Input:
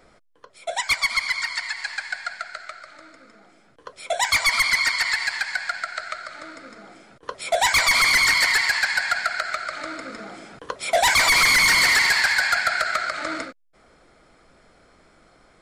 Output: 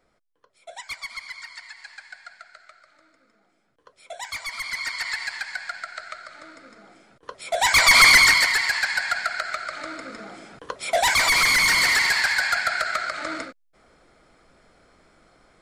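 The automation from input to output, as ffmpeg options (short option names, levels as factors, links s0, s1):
-af "volume=2,afade=t=in:st=4.55:d=0.59:silence=0.421697,afade=t=in:st=7.5:d=0.55:silence=0.266073,afade=t=out:st=8.05:d=0.45:silence=0.398107"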